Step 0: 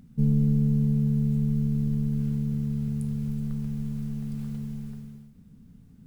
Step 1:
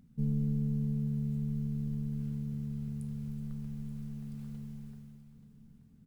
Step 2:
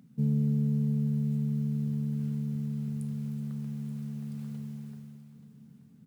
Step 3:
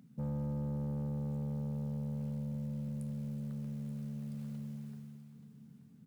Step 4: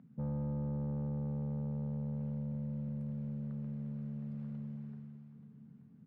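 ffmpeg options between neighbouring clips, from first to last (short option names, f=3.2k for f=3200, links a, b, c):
-af "aecho=1:1:880:0.188,volume=-9dB"
-af "highpass=f=120:w=0.5412,highpass=f=120:w=1.3066,volume=5dB"
-af "asoftclip=type=tanh:threshold=-31.5dB,volume=-2.5dB"
-af "lowpass=1.8k"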